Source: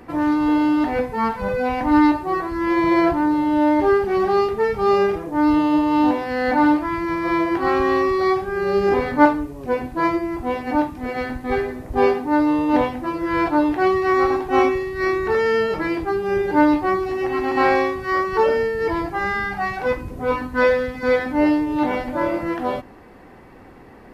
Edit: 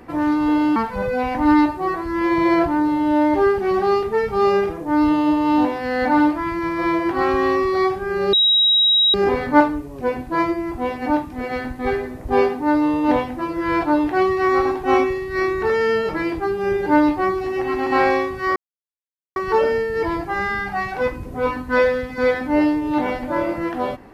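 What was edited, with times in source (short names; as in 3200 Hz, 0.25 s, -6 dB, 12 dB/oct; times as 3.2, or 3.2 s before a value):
0.76–1.22 cut
8.79 add tone 3830 Hz -12 dBFS 0.81 s
18.21 insert silence 0.80 s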